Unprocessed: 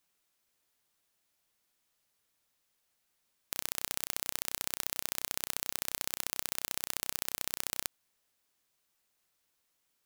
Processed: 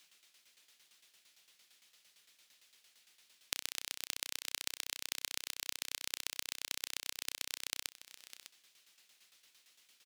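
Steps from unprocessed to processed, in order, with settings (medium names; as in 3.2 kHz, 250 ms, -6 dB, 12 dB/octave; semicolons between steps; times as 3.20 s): frequency weighting D; compression 20:1, threshold -38 dBFS, peak gain reduction 17 dB; tremolo saw down 8.8 Hz, depth 75%; delay 603 ms -14 dB; trim +9 dB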